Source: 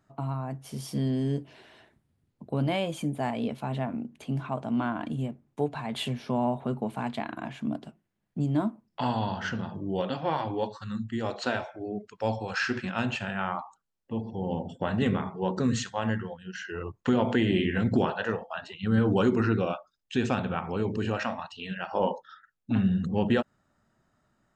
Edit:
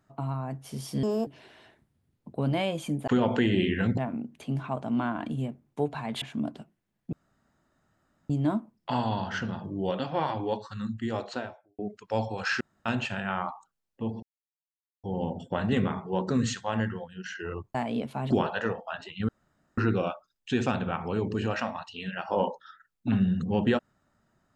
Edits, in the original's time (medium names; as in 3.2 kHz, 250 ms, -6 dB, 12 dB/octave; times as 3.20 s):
1.03–1.41 s: speed 161%
3.22–3.78 s: swap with 17.04–17.94 s
6.02–7.49 s: delete
8.40 s: insert room tone 1.17 s
11.19–11.89 s: studio fade out
12.71–12.96 s: room tone
14.33 s: insert silence 0.81 s
18.92–19.41 s: room tone